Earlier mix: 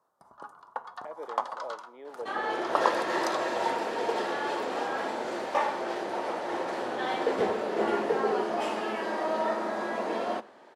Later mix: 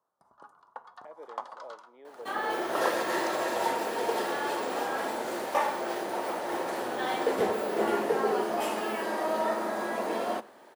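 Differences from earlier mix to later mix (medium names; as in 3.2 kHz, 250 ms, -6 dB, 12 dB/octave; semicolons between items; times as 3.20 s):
speech -6.0 dB; first sound -7.5 dB; second sound: remove low-pass 5.9 kHz 12 dB/octave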